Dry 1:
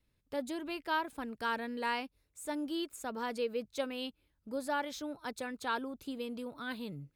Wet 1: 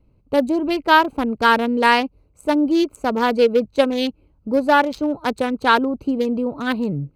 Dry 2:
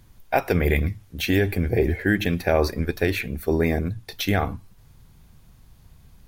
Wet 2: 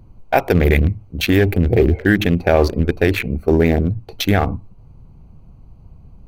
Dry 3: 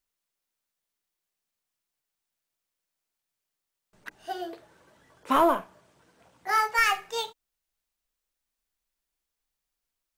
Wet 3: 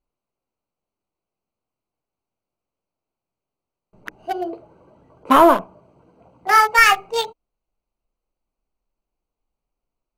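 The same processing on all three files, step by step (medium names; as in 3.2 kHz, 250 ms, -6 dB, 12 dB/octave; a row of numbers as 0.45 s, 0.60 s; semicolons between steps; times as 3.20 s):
local Wiener filter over 25 samples; in parallel at +1 dB: peak limiter -14 dBFS; on the sum: peak normalisation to -1.5 dBFS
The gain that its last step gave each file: +13.5 dB, +2.0 dB, +4.5 dB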